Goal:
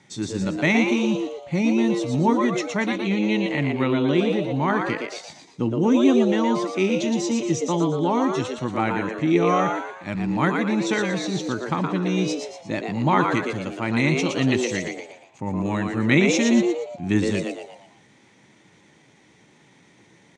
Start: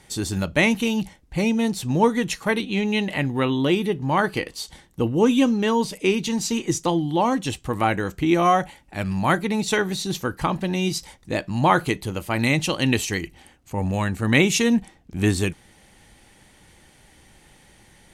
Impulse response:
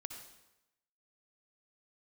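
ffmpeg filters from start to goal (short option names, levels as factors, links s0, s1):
-filter_complex "[0:a]highpass=f=120:w=0.5412,highpass=f=120:w=1.3066,equalizer=f=460:t=q:w=4:g=-9,equalizer=f=720:t=q:w=4:g=-7,equalizer=f=1100:t=q:w=4:g=-4,equalizer=f=1600:t=q:w=4:g=-5,equalizer=f=2900:t=q:w=4:g=-8,equalizer=f=4600:t=q:w=4:g=-9,lowpass=f=6200:w=0.5412,lowpass=f=6200:w=1.3066,atempo=0.89,asplit=6[s0][s1][s2][s3][s4][s5];[s1]adelay=117,afreqshift=120,volume=0.596[s6];[s2]adelay=234,afreqshift=240,volume=0.251[s7];[s3]adelay=351,afreqshift=360,volume=0.105[s8];[s4]adelay=468,afreqshift=480,volume=0.0442[s9];[s5]adelay=585,afreqshift=600,volume=0.0186[s10];[s0][s6][s7][s8][s9][s10]amix=inputs=6:normalize=0,volume=1.12"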